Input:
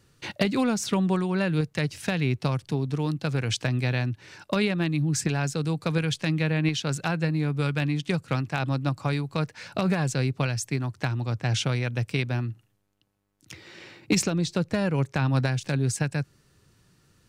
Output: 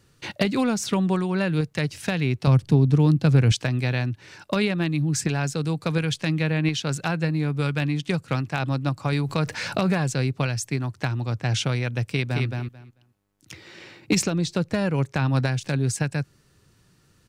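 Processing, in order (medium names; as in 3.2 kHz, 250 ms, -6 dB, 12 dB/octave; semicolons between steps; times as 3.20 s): 2.47–3.52 s: bass shelf 370 Hz +10.5 dB; 9.12–9.98 s: level flattener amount 50%; 12.06–12.46 s: echo throw 220 ms, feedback 15%, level -3.5 dB; trim +1.5 dB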